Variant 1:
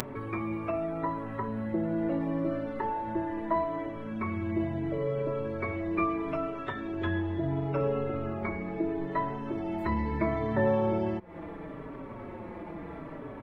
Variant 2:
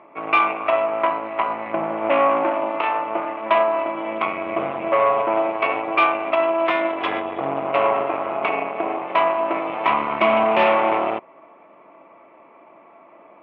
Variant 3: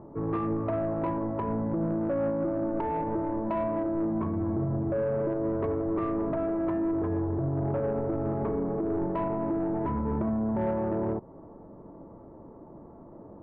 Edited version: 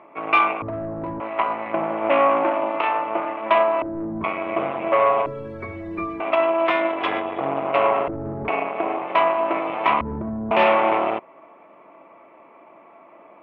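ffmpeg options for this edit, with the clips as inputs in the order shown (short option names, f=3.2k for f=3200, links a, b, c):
-filter_complex "[2:a]asplit=4[a][b][c][d];[1:a]asplit=6[e][f][g][h][i][j];[e]atrim=end=0.622[k];[a]atrim=start=0.618:end=1.202[l];[f]atrim=start=1.198:end=3.822[m];[b]atrim=start=3.818:end=4.242[n];[g]atrim=start=4.238:end=5.262[o];[0:a]atrim=start=5.258:end=6.202[p];[h]atrim=start=6.198:end=8.082[q];[c]atrim=start=8.078:end=8.482[r];[i]atrim=start=8.478:end=10.012[s];[d]atrim=start=10.008:end=10.512[t];[j]atrim=start=10.508[u];[k][l]acrossfade=d=0.004:c1=hsin:c2=hsin[v];[v][m]acrossfade=d=0.004:c1=hsin:c2=hsin[w];[w][n]acrossfade=d=0.004:c1=hsin:c2=hsin[x];[x][o]acrossfade=d=0.004:c1=hsin:c2=hsin[y];[y][p]acrossfade=d=0.004:c1=hsin:c2=hsin[z];[z][q]acrossfade=d=0.004:c1=hsin:c2=hsin[aa];[aa][r]acrossfade=d=0.004:c1=hsin:c2=hsin[ab];[ab][s]acrossfade=d=0.004:c1=hsin:c2=hsin[ac];[ac][t]acrossfade=d=0.004:c1=hsin:c2=hsin[ad];[ad][u]acrossfade=d=0.004:c1=hsin:c2=hsin"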